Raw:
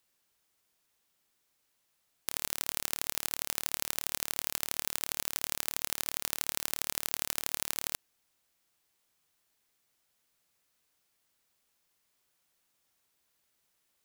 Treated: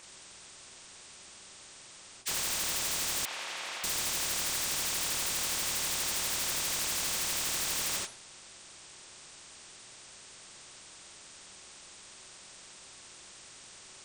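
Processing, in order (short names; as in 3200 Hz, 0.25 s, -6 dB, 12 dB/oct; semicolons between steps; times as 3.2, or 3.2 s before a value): nonlinear frequency compression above 1600 Hz 1.5:1; flange 1.7 Hz, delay 6.5 ms, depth 4.2 ms, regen +83%; on a send at -2 dB: reverb, pre-delay 3 ms; on the sum: vibrato 9.9 Hz 36 cents; sine folder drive 14 dB, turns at -21.5 dBFS; 3.25–3.84 Chebyshev band-pass 710–2600 Hz, order 2; spectral compressor 2:1; gain -2 dB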